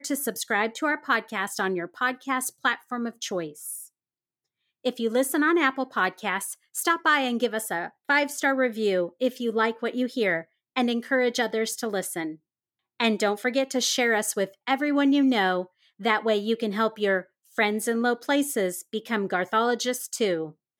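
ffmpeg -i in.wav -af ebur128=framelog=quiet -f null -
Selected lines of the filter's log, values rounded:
Integrated loudness:
  I:         -25.6 LUFS
  Threshold: -35.7 LUFS
Loudness range:
  LRA:         3.8 LU
  Threshold: -45.8 LUFS
  LRA low:   -27.9 LUFS
  LRA high:  -24.1 LUFS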